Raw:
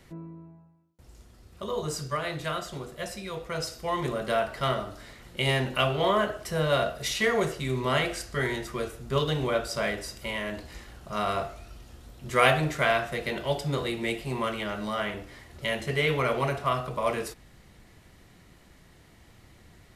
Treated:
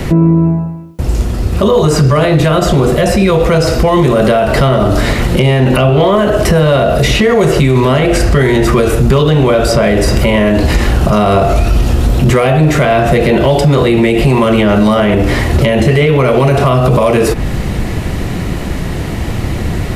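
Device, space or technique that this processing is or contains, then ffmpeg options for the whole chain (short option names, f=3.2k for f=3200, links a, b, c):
mastering chain: -filter_complex "[0:a]equalizer=f=2.6k:t=o:w=0.27:g=4,acrossover=split=690|2800[a][b][c];[a]acompressor=threshold=-36dB:ratio=4[d];[b]acompressor=threshold=-42dB:ratio=4[e];[c]acompressor=threshold=-48dB:ratio=4[f];[d][e][f]amix=inputs=3:normalize=0,acompressor=threshold=-41dB:ratio=1.5,asoftclip=type=tanh:threshold=-25.5dB,tiltshelf=f=900:g=5,asoftclip=type=hard:threshold=-28.5dB,alimiter=level_in=35.5dB:limit=-1dB:release=50:level=0:latency=1,volume=-1dB"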